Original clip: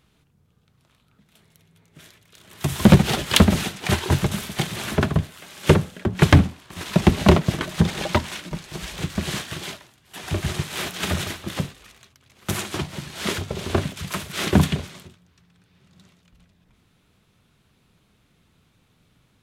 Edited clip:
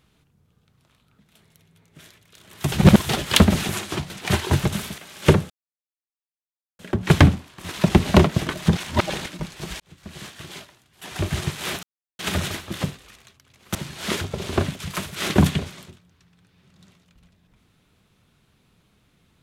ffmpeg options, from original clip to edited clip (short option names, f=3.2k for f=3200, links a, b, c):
-filter_complex "[0:a]asplit=12[a][b][c][d][e][f][g][h][i][j][k][l];[a]atrim=end=2.722[m];[b]atrim=start=2.718:end=3.092,asetpts=PTS-STARTPTS,areverse[n];[c]atrim=start=3.088:end=3.692[o];[d]atrim=start=12.508:end=12.922[p];[e]atrim=start=3.688:end=4.572[q];[f]atrim=start=5.388:end=5.91,asetpts=PTS-STARTPTS,afade=t=out:st=0.518:d=0.004:c=hsin,apad=pad_dur=1.29[r];[g]atrim=start=5.91:end=7.892,asetpts=PTS-STARTPTS,afade=t=in:d=0.004:c=hsin[s];[h]atrim=start=7.888:end=8.382,asetpts=PTS-STARTPTS,areverse[t];[i]atrim=start=8.378:end=8.92,asetpts=PTS-STARTPTS,afade=t=out:st=0.538:d=0.004:c=hsin[u];[j]atrim=start=8.92:end=10.95,asetpts=PTS-STARTPTS,afade=t=in:d=1.39,afade=t=out:st=2.026:d=0.004:c=hsin,apad=pad_dur=0.36[v];[k]atrim=start=10.95:end=12.512,asetpts=PTS-STARTPTS,afade=t=in:d=0.004:c=hsin[w];[l]atrim=start=12.918[x];[m][n]acrossfade=d=0.004:c1=hsin:c2=hsin[y];[y][o]acrossfade=d=0.004:c1=hsin:c2=hsin[z];[z][p]acrossfade=d=0.004:c1=hsin:c2=hsin[aa];[aa][q]acrossfade=d=0.004:c1=hsin:c2=hsin[ab];[r][s]concat=n=2:v=0:a=1[ac];[ab][ac]acrossfade=d=0.004:c1=hsin:c2=hsin[ad];[ad][t]acrossfade=d=0.004:c1=hsin:c2=hsin[ae];[u][v][w]concat=n=3:v=0:a=1[af];[ae][af]acrossfade=d=0.004:c1=hsin:c2=hsin[ag];[ag][x]acrossfade=d=0.004:c1=hsin:c2=hsin"